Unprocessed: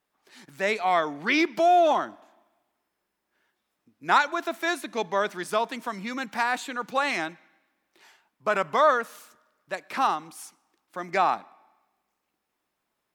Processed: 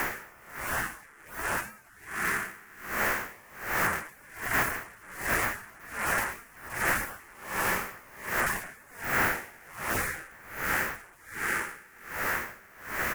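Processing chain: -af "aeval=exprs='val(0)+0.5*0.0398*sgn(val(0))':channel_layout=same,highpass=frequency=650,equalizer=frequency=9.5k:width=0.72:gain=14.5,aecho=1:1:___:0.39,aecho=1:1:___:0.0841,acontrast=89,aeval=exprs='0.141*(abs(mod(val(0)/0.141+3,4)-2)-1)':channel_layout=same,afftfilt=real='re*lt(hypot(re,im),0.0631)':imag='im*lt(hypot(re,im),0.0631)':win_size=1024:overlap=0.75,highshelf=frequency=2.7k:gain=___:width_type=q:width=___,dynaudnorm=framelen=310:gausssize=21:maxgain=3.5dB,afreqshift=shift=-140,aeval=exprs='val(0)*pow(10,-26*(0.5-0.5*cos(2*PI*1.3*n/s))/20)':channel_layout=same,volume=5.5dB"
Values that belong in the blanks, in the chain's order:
5.9, 200, -12.5, 3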